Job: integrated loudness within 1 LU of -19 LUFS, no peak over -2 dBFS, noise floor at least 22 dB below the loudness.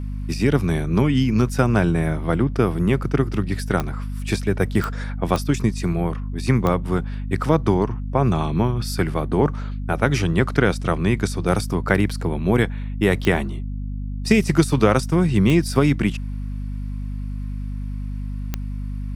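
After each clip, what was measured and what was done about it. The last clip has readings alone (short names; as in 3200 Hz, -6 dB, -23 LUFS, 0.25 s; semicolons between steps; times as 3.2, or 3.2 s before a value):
clicks 7; hum 50 Hz; harmonics up to 250 Hz; hum level -25 dBFS; loudness -21.5 LUFS; peak -1.0 dBFS; loudness target -19.0 LUFS
-> de-click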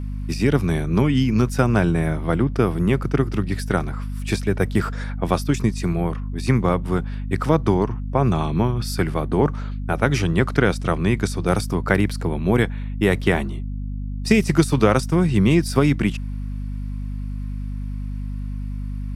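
clicks 0; hum 50 Hz; harmonics up to 250 Hz; hum level -25 dBFS
-> notches 50/100/150/200/250 Hz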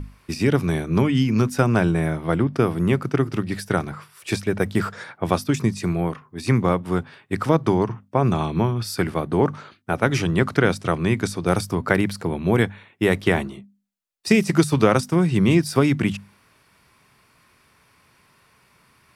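hum none; loudness -21.5 LUFS; peak -2.0 dBFS; loudness target -19.0 LUFS
-> gain +2.5 dB; limiter -2 dBFS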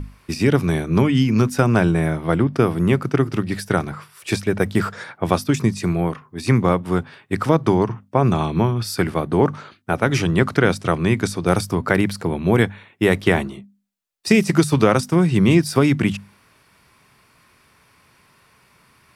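loudness -19.5 LUFS; peak -2.0 dBFS; noise floor -57 dBFS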